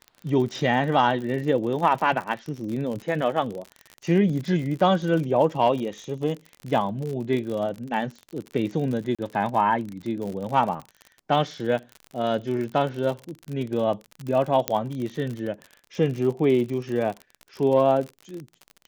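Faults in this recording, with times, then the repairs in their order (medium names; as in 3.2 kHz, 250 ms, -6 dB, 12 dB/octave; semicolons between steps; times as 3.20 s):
crackle 49 per s -30 dBFS
9.15–9.19 s: dropout 36 ms
14.68 s: pop -5 dBFS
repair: de-click; interpolate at 9.15 s, 36 ms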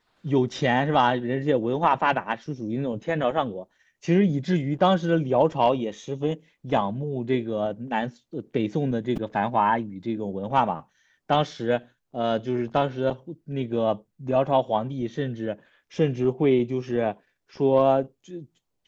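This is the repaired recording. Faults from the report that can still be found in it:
nothing left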